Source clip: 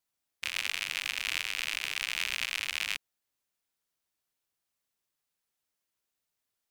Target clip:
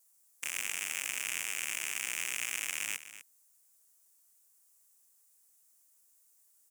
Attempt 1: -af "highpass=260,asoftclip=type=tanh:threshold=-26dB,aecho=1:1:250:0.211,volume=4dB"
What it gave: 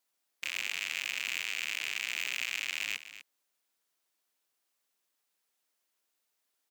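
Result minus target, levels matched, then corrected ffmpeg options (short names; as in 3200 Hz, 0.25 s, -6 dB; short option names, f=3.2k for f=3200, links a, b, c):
8000 Hz band -8.0 dB
-af "highpass=260,highshelf=f=5.4k:t=q:w=1.5:g=14,asoftclip=type=tanh:threshold=-26dB,aecho=1:1:250:0.211,volume=4dB"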